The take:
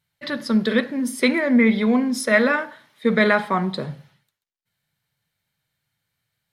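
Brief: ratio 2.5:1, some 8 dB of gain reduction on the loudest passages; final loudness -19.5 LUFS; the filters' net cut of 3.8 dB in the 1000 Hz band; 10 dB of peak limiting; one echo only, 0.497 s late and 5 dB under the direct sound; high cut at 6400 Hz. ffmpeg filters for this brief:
-af "lowpass=6.4k,equalizer=f=1k:t=o:g=-5,acompressor=threshold=-25dB:ratio=2.5,alimiter=limit=-23dB:level=0:latency=1,aecho=1:1:497:0.562,volume=11.5dB"

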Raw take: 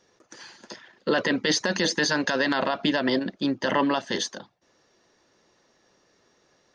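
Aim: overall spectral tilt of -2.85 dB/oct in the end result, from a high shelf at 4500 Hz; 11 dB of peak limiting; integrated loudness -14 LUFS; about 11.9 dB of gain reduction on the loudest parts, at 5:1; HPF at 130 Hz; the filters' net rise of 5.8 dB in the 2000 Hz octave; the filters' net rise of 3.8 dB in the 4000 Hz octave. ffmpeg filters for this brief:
-af "highpass=130,equalizer=f=2k:t=o:g=7,equalizer=f=4k:t=o:g=6,highshelf=f=4.5k:g=-6.5,acompressor=threshold=-29dB:ratio=5,volume=23dB,alimiter=limit=-2.5dB:level=0:latency=1"

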